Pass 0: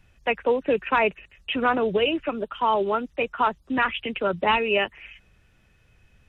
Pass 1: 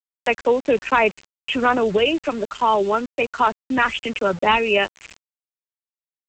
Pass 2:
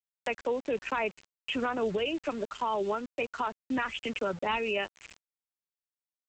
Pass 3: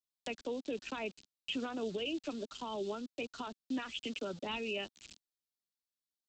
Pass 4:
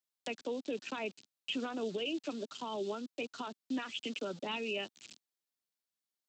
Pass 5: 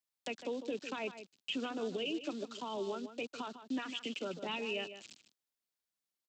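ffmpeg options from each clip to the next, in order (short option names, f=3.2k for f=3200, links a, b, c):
-af "aresample=16000,aeval=exprs='val(0)*gte(abs(val(0)),0.0119)':c=same,aresample=44100,acompressor=mode=upward:threshold=-33dB:ratio=2.5,volume=4dB"
-af "alimiter=limit=-13.5dB:level=0:latency=1:release=189,volume=-8dB"
-filter_complex "[0:a]equalizer=f=250:t=o:w=1:g=6,equalizer=f=500:t=o:w=1:g=-5,equalizer=f=1k:t=o:w=1:g=-8,equalizer=f=2k:t=o:w=1:g=-11,equalizer=f=4k:t=o:w=1:g=9,acrossover=split=300|1700[a][b][c];[a]acompressor=threshold=-45dB:ratio=5[d];[d][b][c]amix=inputs=3:normalize=0,volume=-3dB"
-af "highpass=150,volume=1dB"
-filter_complex "[0:a]asplit=2[a][b];[b]adelay=151.6,volume=-11dB,highshelf=f=4k:g=-3.41[c];[a][c]amix=inputs=2:normalize=0,volume=-1dB"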